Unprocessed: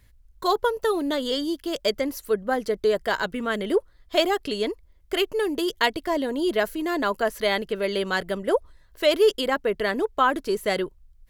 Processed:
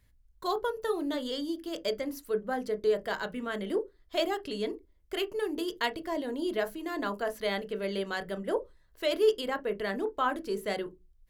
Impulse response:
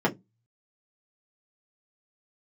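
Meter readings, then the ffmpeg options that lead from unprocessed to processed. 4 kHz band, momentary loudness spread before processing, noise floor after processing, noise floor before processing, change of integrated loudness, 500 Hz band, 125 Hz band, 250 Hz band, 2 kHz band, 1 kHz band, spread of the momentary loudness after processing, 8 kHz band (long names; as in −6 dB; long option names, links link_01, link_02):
−9.0 dB, 5 LU, −63 dBFS, −56 dBFS, −7.5 dB, −7.0 dB, can't be measured, −7.0 dB, −9.0 dB, −8.0 dB, 6 LU, −9.0 dB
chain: -filter_complex "[0:a]asplit=2[link_01][link_02];[1:a]atrim=start_sample=2205,asetrate=41013,aresample=44100,adelay=21[link_03];[link_02][link_03]afir=irnorm=-1:irlink=0,volume=-23.5dB[link_04];[link_01][link_04]amix=inputs=2:normalize=0,volume=-9dB"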